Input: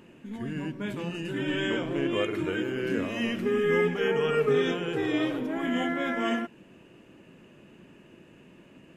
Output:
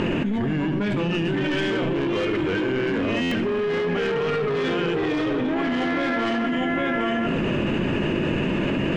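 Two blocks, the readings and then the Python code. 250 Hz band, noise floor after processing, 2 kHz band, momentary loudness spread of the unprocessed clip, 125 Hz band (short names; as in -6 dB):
+7.5 dB, -24 dBFS, +6.0 dB, 9 LU, +9.5 dB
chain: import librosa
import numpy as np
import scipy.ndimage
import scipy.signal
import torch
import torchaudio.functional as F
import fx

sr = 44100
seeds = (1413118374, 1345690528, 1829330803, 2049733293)

p1 = fx.rider(x, sr, range_db=10, speed_s=0.5)
p2 = x + F.gain(torch.from_numpy(p1), -2.0).numpy()
p3 = scipy.signal.sosfilt(scipy.signal.butter(2, 4000.0, 'lowpass', fs=sr, output='sos'), p2)
p4 = fx.low_shelf(p3, sr, hz=70.0, db=8.0)
p5 = fx.hum_notches(p4, sr, base_hz=60, count=4)
p6 = p5 + fx.echo_single(p5, sr, ms=804, db=-12.5, dry=0)
p7 = 10.0 ** (-22.0 / 20.0) * np.tanh(p6 / 10.0 ** (-22.0 / 20.0))
p8 = fx.echo_feedback(p7, sr, ms=72, feedback_pct=52, wet_db=-14.5)
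p9 = fx.buffer_glitch(p8, sr, at_s=(3.21,), block=512, repeats=8)
y = fx.env_flatten(p9, sr, amount_pct=100)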